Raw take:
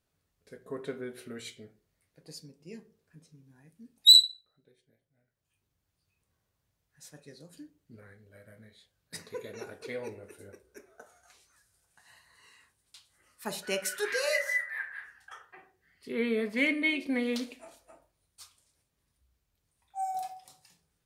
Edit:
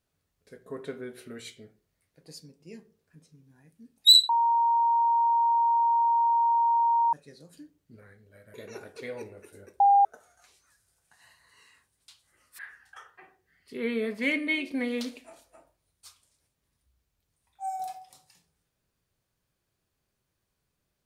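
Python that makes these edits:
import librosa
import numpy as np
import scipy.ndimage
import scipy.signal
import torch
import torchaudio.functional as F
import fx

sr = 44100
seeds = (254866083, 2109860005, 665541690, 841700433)

y = fx.edit(x, sr, fx.bleep(start_s=4.29, length_s=2.84, hz=932.0, db=-20.0),
    fx.cut(start_s=8.54, length_s=0.86),
    fx.bleep(start_s=10.66, length_s=0.25, hz=802.0, db=-15.5),
    fx.cut(start_s=13.45, length_s=1.49), tone=tone)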